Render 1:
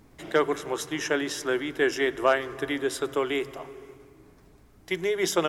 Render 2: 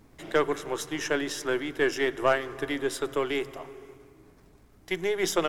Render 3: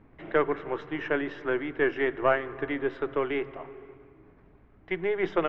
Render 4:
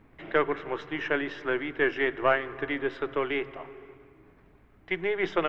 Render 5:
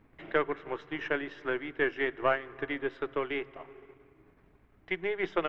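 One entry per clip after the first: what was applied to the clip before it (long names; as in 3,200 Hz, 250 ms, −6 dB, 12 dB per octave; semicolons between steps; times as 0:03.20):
gain on one half-wave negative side −3 dB
low-pass filter 2,500 Hz 24 dB per octave
high-shelf EQ 2,100 Hz +9.5 dB; level −1.5 dB
transient designer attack +2 dB, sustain −4 dB; level −4.5 dB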